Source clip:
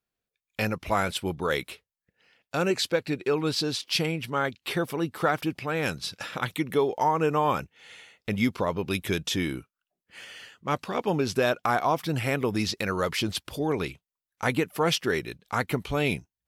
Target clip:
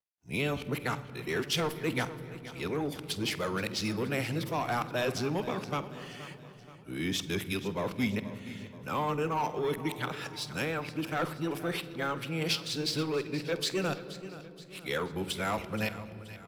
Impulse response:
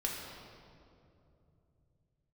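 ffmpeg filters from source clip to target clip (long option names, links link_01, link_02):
-filter_complex "[0:a]areverse,highpass=92,acrossover=split=170|1900[link_01][link_02][link_03];[link_02]asoftclip=type=tanh:threshold=-22.5dB[link_04];[link_01][link_04][link_03]amix=inputs=3:normalize=0,aecho=1:1:476|952|1428|1904:0.168|0.0823|0.0403|0.0198,asplit=2[link_05][link_06];[1:a]atrim=start_sample=2205,lowshelf=frequency=340:gain=8,adelay=48[link_07];[link_06][link_07]afir=irnorm=-1:irlink=0,volume=-17.5dB[link_08];[link_05][link_08]amix=inputs=2:normalize=0,volume=-4dB" -ar 44100 -c:a adpcm_ima_wav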